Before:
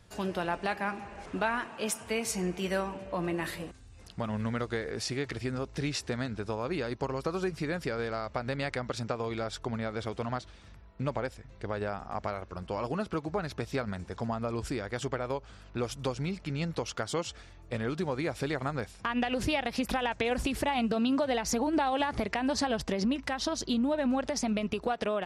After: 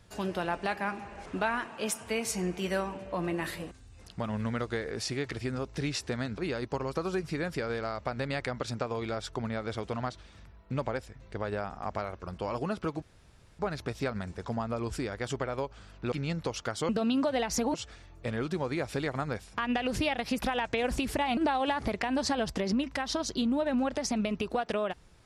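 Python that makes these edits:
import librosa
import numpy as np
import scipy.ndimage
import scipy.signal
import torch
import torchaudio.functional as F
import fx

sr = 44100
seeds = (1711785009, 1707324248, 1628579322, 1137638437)

y = fx.edit(x, sr, fx.cut(start_s=6.38, length_s=0.29),
    fx.insert_room_tone(at_s=13.31, length_s=0.57),
    fx.cut(start_s=15.84, length_s=0.6),
    fx.move(start_s=20.84, length_s=0.85, to_s=17.21), tone=tone)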